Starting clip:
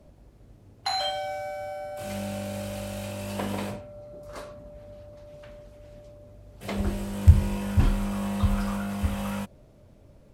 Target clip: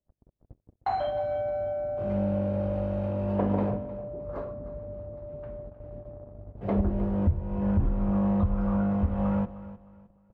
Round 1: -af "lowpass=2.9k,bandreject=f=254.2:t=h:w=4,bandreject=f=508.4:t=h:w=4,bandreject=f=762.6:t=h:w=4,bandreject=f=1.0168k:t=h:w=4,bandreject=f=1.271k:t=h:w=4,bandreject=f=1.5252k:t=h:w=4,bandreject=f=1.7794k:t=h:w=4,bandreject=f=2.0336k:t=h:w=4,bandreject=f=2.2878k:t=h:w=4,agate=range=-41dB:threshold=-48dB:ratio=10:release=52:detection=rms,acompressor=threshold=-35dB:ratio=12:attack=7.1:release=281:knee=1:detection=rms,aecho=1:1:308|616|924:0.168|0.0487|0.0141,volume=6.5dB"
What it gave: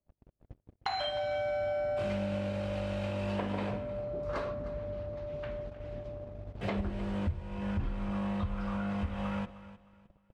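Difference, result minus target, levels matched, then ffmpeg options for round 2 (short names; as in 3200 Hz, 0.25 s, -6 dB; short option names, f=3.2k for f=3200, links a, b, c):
4000 Hz band +19.0 dB; compressor: peak gain reduction +8.5 dB
-af "lowpass=810,bandreject=f=254.2:t=h:w=4,bandreject=f=508.4:t=h:w=4,bandreject=f=762.6:t=h:w=4,bandreject=f=1.0168k:t=h:w=4,bandreject=f=1.271k:t=h:w=4,bandreject=f=1.5252k:t=h:w=4,bandreject=f=1.7794k:t=h:w=4,bandreject=f=2.0336k:t=h:w=4,bandreject=f=2.2878k:t=h:w=4,agate=range=-41dB:threshold=-48dB:ratio=10:release=52:detection=rms,acompressor=threshold=-25.5dB:ratio=12:attack=7.1:release=281:knee=1:detection=rms,aecho=1:1:308|616|924:0.168|0.0487|0.0141,volume=6.5dB"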